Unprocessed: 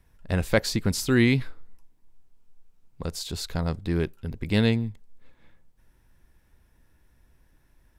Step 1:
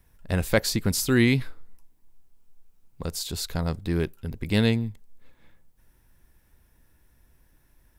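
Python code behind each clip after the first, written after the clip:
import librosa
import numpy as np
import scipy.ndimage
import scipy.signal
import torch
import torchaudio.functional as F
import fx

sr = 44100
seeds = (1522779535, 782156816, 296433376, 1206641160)

y = fx.high_shelf(x, sr, hz=9900.0, db=11.0)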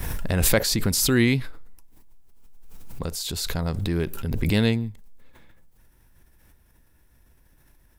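y = fx.pre_swell(x, sr, db_per_s=25.0)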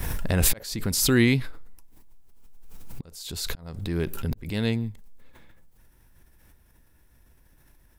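y = fx.auto_swell(x, sr, attack_ms=544.0)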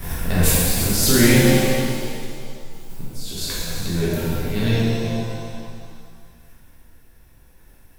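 y = fx.reverse_delay_fb(x, sr, ms=212, feedback_pct=45, wet_db=-9.5)
y = fx.rev_shimmer(y, sr, seeds[0], rt60_s=2.0, semitones=7, shimmer_db=-8, drr_db=-8.0)
y = y * 10.0 ** (-2.5 / 20.0)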